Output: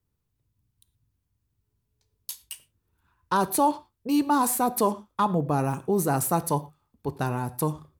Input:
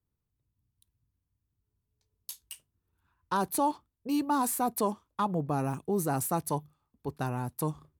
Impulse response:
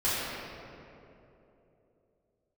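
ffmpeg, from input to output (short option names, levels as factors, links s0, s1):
-filter_complex "[0:a]asplit=2[s0][s1];[1:a]atrim=start_sample=2205,afade=t=out:st=0.17:d=0.01,atrim=end_sample=7938[s2];[s1][s2]afir=irnorm=-1:irlink=0,volume=0.0794[s3];[s0][s3]amix=inputs=2:normalize=0,volume=1.78"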